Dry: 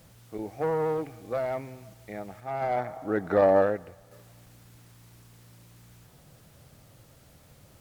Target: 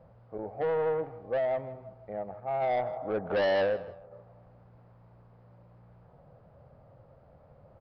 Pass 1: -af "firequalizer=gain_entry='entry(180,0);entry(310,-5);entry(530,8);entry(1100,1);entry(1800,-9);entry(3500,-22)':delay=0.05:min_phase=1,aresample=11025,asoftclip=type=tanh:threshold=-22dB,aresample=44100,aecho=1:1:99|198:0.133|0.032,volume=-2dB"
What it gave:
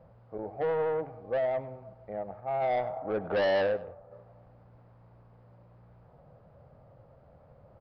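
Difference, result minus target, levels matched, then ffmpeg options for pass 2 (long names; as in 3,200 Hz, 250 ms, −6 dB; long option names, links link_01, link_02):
echo 60 ms early
-af "firequalizer=gain_entry='entry(180,0);entry(310,-5);entry(530,8);entry(1100,1);entry(1800,-9);entry(3500,-22)':delay=0.05:min_phase=1,aresample=11025,asoftclip=type=tanh:threshold=-22dB,aresample=44100,aecho=1:1:159|318:0.133|0.032,volume=-2dB"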